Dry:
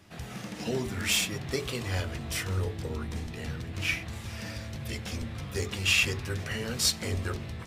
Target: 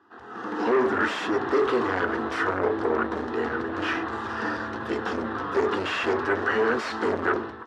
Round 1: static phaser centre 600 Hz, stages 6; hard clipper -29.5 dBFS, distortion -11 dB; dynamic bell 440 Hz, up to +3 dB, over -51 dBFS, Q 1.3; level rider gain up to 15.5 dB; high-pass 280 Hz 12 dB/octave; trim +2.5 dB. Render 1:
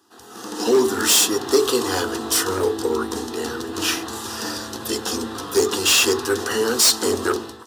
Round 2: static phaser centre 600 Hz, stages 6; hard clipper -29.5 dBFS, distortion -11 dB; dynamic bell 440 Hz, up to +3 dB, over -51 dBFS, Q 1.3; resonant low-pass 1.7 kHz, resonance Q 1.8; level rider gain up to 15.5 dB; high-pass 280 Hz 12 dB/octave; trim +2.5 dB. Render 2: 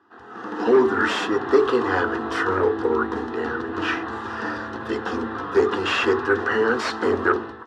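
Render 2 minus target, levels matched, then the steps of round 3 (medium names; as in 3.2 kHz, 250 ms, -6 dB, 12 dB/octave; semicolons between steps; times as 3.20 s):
hard clipper: distortion -6 dB
static phaser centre 600 Hz, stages 6; hard clipper -38 dBFS, distortion -5 dB; dynamic bell 440 Hz, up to +3 dB, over -51 dBFS, Q 1.3; resonant low-pass 1.7 kHz, resonance Q 1.8; level rider gain up to 15.5 dB; high-pass 280 Hz 12 dB/octave; trim +2.5 dB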